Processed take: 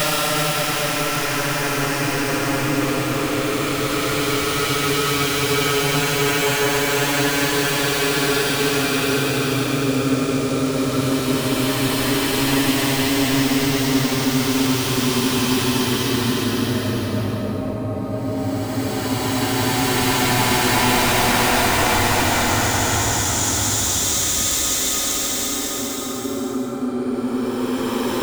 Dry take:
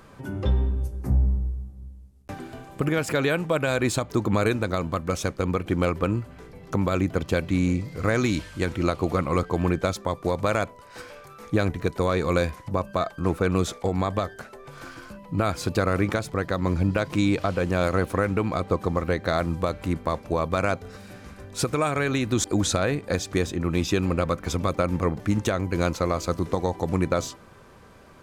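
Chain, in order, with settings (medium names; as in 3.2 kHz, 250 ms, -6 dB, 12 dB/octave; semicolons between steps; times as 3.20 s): repeats whose band climbs or falls 150 ms, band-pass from 260 Hz, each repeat 0.7 oct, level -6.5 dB; integer overflow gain 17 dB; Paulstretch 44×, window 0.10 s, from 21.87 s; trim +5 dB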